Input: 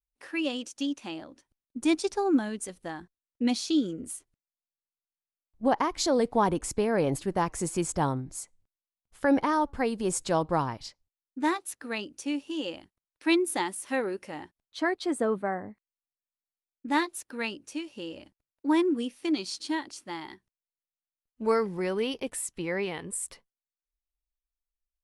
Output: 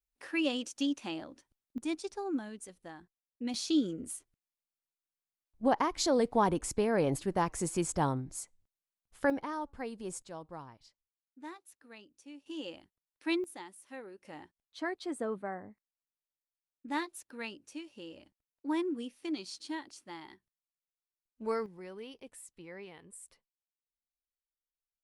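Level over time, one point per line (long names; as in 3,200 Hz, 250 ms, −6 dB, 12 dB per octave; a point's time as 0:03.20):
−1 dB
from 0:01.78 −10.5 dB
from 0:03.54 −3 dB
from 0:09.30 −12 dB
from 0:10.22 −19 dB
from 0:12.46 −8 dB
from 0:13.44 −17 dB
from 0:14.25 −8.5 dB
from 0:21.66 −16.5 dB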